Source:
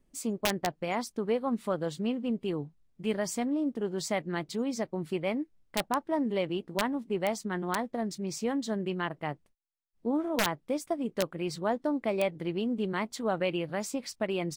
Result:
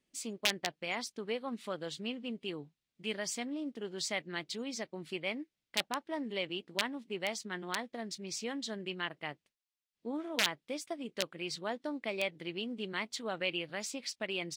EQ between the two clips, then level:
meter weighting curve D
−8.0 dB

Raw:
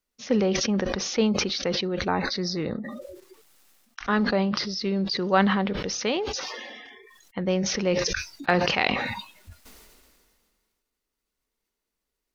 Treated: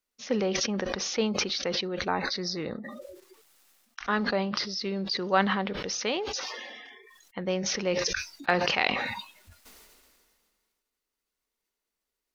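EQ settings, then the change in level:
low-shelf EQ 300 Hz −7.5 dB
−1.5 dB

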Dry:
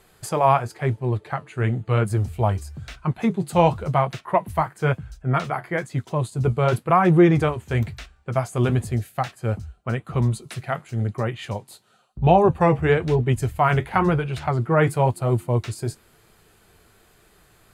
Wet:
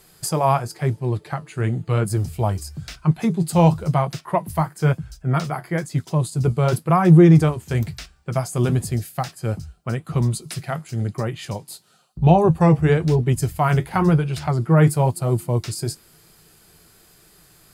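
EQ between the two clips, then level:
high-shelf EQ 5,200 Hz +11.5 dB
dynamic equaliser 2,500 Hz, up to −4 dB, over −35 dBFS, Q 0.73
thirty-one-band graphic EQ 160 Hz +10 dB, 315 Hz +4 dB, 5,000 Hz +7 dB
−1.0 dB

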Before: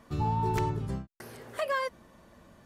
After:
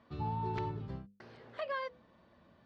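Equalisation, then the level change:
high-pass filter 63 Hz
Chebyshev low-pass filter 4,200 Hz, order 3
mains-hum notches 50/100/150/200/250/300/350/400/450/500 Hz
−7.0 dB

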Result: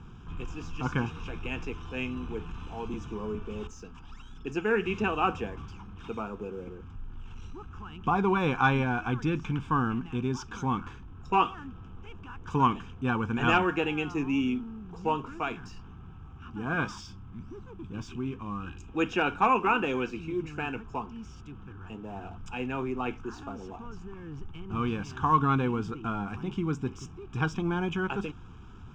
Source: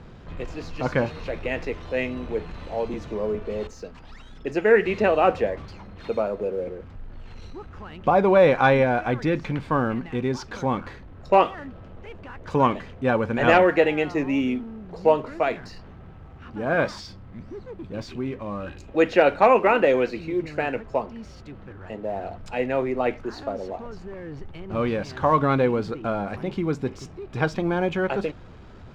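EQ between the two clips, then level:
phaser with its sweep stopped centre 2,900 Hz, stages 8
−1.5 dB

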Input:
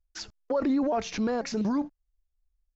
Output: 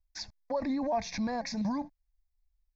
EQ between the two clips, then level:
phaser with its sweep stopped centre 2,000 Hz, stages 8
0.0 dB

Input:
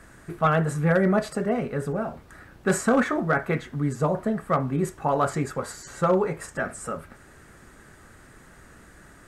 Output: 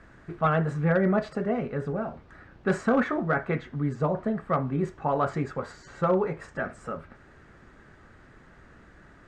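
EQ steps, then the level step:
high-frequency loss of the air 160 metres
−2.0 dB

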